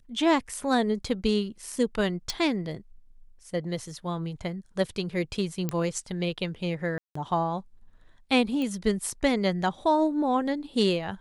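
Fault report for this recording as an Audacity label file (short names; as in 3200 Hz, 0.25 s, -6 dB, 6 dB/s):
2.300000	2.300000	pop
5.690000	5.690000	pop -15 dBFS
6.980000	7.150000	gap 0.174 s
8.620000	8.620000	pop -20 dBFS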